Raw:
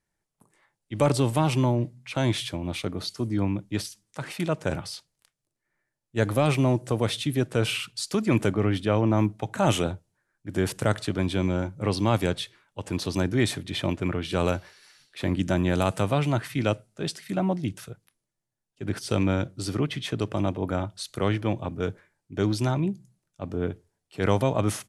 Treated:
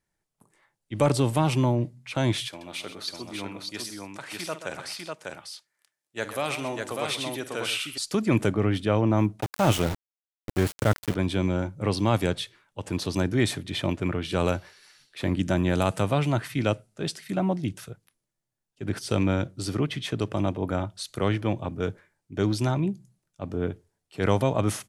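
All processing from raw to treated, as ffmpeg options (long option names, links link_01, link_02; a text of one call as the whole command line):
ffmpeg -i in.wav -filter_complex "[0:a]asettb=1/sr,asplit=3[link_01][link_02][link_03];[link_01]atrim=end=2.484[link_04];[link_02]atrim=start=2.48:end=7.98,asetpts=PTS-STARTPTS,afade=type=in:duration=0.004:curve=qsin,afade=type=out:start_time=5.496:duration=0.004:curve=qsin,highpass=frequency=990:poles=1,aecho=1:1:50|129|598:0.211|0.266|0.708,atrim=end_sample=242550[link_05];[link_03]atrim=start=7.976[link_06];[link_04][link_05]acrossfade=duration=0.004:curve1=hsin:curve2=qsin[link_07];[link_07][link_06]acrossfade=duration=0.004:curve1=qsin:curve2=hsin,asettb=1/sr,asplit=3[link_08][link_09][link_10];[link_08]atrim=end=9.414[link_11];[link_09]atrim=start=9.41:end=11.15,asetpts=PTS-STARTPTS,afade=type=in:duration=0.004:curve=qsin,afade=type=out:start_time=1.736:duration=0.004:curve=qsin,equalizer=frequency=67:width_type=o:width=0.93:gain=9.5,aeval=exprs='val(0)*gte(abs(val(0)),0.0447)':channel_layout=same[link_12];[link_10]atrim=start=11.146[link_13];[link_11][link_12]acrossfade=duration=0.004:curve1=hsin:curve2=qsin[link_14];[link_14][link_13]acrossfade=duration=0.004:curve1=qsin:curve2=hsin" out.wav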